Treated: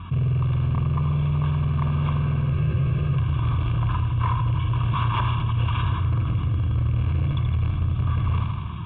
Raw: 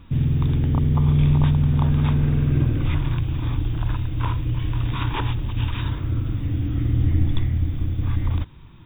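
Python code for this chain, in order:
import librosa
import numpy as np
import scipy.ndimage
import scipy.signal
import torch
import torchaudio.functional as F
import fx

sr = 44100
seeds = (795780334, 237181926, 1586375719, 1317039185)

p1 = fx.rattle_buzz(x, sr, strikes_db=-17.0, level_db=-30.0)
p2 = fx.schmitt(p1, sr, flips_db=-17.5)
p3 = p1 + (p2 * librosa.db_to_amplitude(-10.0))
p4 = fx.peak_eq(p3, sr, hz=1400.0, db=2.0, octaves=0.77)
p5 = fx.fixed_phaser(p4, sr, hz=1900.0, stages=6)
p6 = p5 + fx.echo_feedback(p5, sr, ms=79, feedback_pct=52, wet_db=-8.0, dry=0)
p7 = fx.rider(p6, sr, range_db=4, speed_s=0.5)
p8 = scipy.signal.sosfilt(scipy.signal.butter(2, 100.0, 'highpass', fs=sr, output='sos'), p7)
p9 = 10.0 ** (-18.5 / 20.0) * np.tanh(p8 / 10.0 ** (-18.5 / 20.0))
p10 = scipy.signal.sosfilt(scipy.signal.butter(4, 2800.0, 'lowpass', fs=sr, output='sos'), p9)
p11 = p10 + 0.66 * np.pad(p10, (int(1.8 * sr / 1000.0), 0))[:len(p10)]
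p12 = fx.spec_freeze(p11, sr, seeds[0], at_s=2.52, hold_s=0.65)
y = fx.env_flatten(p12, sr, amount_pct=50)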